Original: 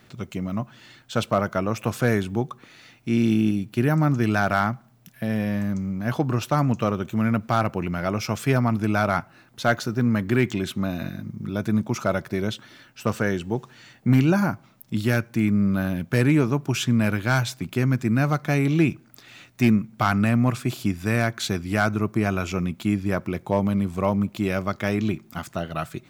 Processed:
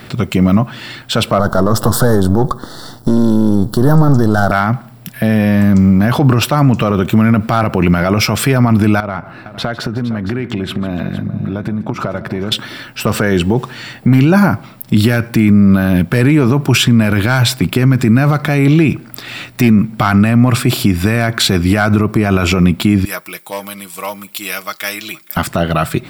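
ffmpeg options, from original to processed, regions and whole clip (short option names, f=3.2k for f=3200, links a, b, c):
-filter_complex "[0:a]asettb=1/sr,asplit=3[a][b][c];[a]atrim=end=1.394[d];[b]atrim=start=1.39:end=4.52,asetpts=PTS-STARTPTS,afade=t=in:d=0.004:c=qsin,afade=t=out:st=3.126:d=0.004:c=qsin,aeval=exprs='if(lt(val(0),0),0.251*val(0),val(0))':c=same,acontrast=54,asuperstop=centerf=2400:order=4:qfactor=0.95[e];[c]atrim=start=4.516[f];[d][e]acrossfade=d=0.004:c1=hsin:c2=qsin[g];[g][f]acrossfade=d=0.004:c1=qsin:c2=hsin,asettb=1/sr,asplit=3[h][i][j];[h]atrim=end=9.004[k];[i]atrim=start=9:end=12.52,asetpts=PTS-STARTPTS,afade=t=in:d=0.004:c=qsin,afade=t=out:st=3.516:d=0.004:c=qsin,lowpass=f=1.9k:p=1,acompressor=threshold=-34dB:ratio=12:attack=3.2:release=140:knee=1:detection=peak,aecho=1:1:150|461:0.133|0.2,atrim=end_sample=155232[l];[j]atrim=start=12.516[m];[k][l]acrossfade=d=0.004:c1=hsin:c2=qsin[n];[n][m]acrossfade=d=0.004:c1=qsin:c2=hsin,asettb=1/sr,asplit=3[o][p][q];[o]atrim=end=23.054[r];[p]atrim=start=23.05:end=25.37,asetpts=PTS-STARTPTS,afade=t=in:d=0.004:c=qsin,afade=t=out:st=2.316:d=0.004:c=qsin,aderivative,aecho=1:1:6.3:0.55,atrim=end_sample=102312,aecho=1:1:467:0.0708,atrim=end_sample=102312[s];[q]atrim=start=25.366[t];[r][s]acrossfade=d=0.004:c1=hsin:c2=qsin[u];[u][t]acrossfade=d=0.004:c1=qsin:c2=hsin,equalizer=f=6.4k:w=6.6:g=-12,alimiter=level_in=20.5dB:limit=-1dB:release=50:level=0:latency=1,volume=-1dB"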